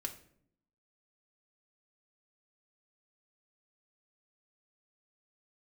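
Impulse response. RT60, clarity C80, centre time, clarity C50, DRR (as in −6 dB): 0.65 s, 16.0 dB, 11 ms, 12.5 dB, 1.5 dB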